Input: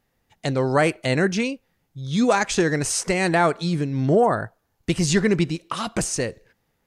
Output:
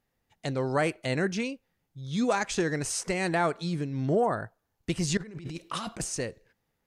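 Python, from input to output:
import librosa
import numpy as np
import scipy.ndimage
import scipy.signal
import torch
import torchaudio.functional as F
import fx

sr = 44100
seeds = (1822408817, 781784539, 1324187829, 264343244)

y = fx.over_compress(x, sr, threshold_db=-31.0, ratio=-1.0, at=(5.17, 6.0))
y = y * 10.0 ** (-7.5 / 20.0)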